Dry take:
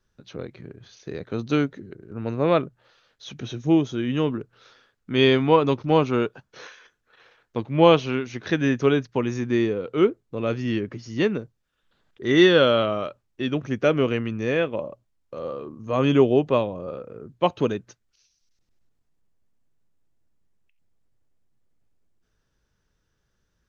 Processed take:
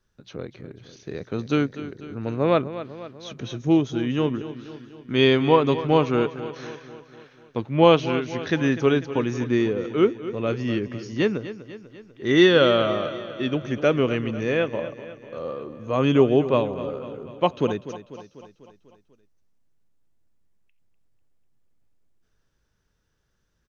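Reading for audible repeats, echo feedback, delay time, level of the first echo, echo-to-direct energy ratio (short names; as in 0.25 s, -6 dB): 5, 57%, 0.247 s, -13.5 dB, -12.0 dB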